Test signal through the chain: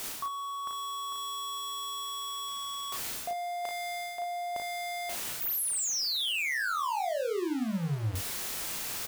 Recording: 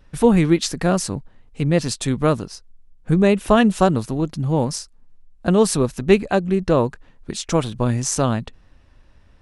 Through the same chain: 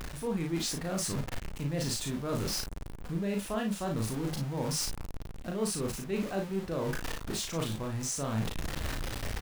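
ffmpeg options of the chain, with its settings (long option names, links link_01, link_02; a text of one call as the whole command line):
ffmpeg -i in.wav -af "aeval=exprs='val(0)+0.5*0.0891*sgn(val(0))':channel_layout=same,areverse,acompressor=threshold=-24dB:ratio=6,areverse,aecho=1:1:36|55:0.668|0.398,volume=-8.5dB" out.wav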